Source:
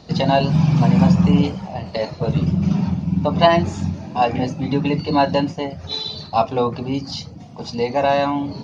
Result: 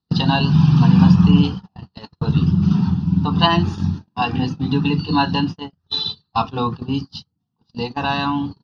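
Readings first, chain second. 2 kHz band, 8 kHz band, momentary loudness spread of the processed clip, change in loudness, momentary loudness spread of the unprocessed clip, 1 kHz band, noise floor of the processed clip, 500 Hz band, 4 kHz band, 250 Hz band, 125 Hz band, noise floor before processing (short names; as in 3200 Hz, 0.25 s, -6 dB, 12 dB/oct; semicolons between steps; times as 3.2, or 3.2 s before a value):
+1.0 dB, n/a, 13 LU, +1.0 dB, 11 LU, -2.0 dB, -74 dBFS, -9.5 dB, +3.5 dB, +2.0 dB, +2.5 dB, -37 dBFS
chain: fixed phaser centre 2200 Hz, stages 6; dynamic EQ 2700 Hz, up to +5 dB, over -47 dBFS, Q 3.4; gate -27 dBFS, range -39 dB; gain +3.5 dB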